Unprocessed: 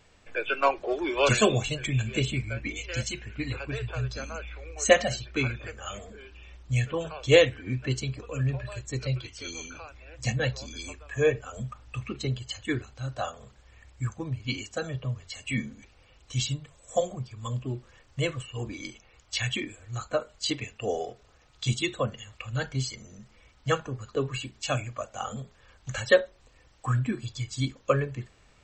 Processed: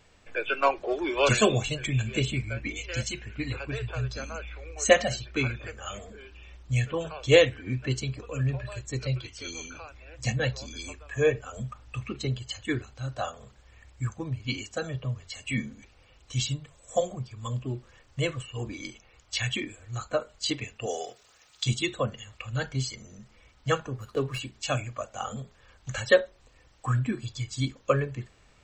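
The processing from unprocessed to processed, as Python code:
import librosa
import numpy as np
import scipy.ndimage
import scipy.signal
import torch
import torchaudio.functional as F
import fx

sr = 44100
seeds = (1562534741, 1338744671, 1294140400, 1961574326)

y = fx.tilt_eq(x, sr, slope=3.5, at=(20.86, 21.64))
y = fx.running_max(y, sr, window=3, at=(23.93, 24.38), fade=0.02)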